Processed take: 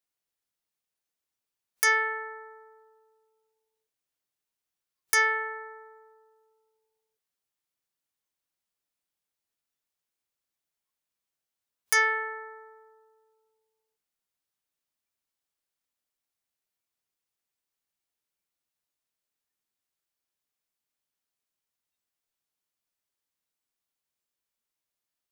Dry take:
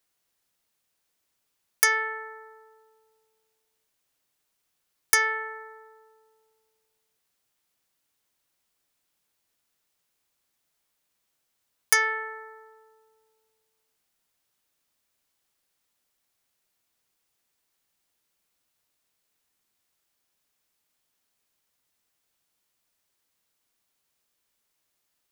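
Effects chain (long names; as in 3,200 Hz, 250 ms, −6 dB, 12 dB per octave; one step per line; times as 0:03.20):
noise reduction from a noise print of the clip's start 13 dB
boost into a limiter +10.5 dB
level −9 dB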